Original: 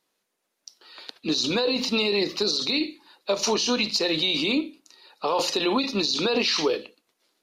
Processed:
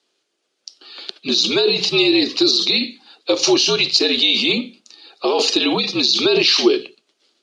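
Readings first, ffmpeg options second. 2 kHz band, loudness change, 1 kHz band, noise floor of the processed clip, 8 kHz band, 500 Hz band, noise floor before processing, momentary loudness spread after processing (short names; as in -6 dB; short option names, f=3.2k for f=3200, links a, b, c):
+7.0 dB, +8.5 dB, +2.5 dB, -72 dBFS, +6.5 dB, +7.0 dB, -78 dBFS, 12 LU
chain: -af "afreqshift=-70,highpass=300,equalizer=f=360:t=q:w=4:g=7,equalizer=f=950:t=q:w=4:g=-7,equalizer=f=1.9k:t=q:w=4:g=-4,equalizer=f=3.1k:t=q:w=4:g=5,equalizer=f=4.6k:t=q:w=4:g=4,lowpass=f=8.2k:w=0.5412,lowpass=f=8.2k:w=1.3066,volume=6.5dB"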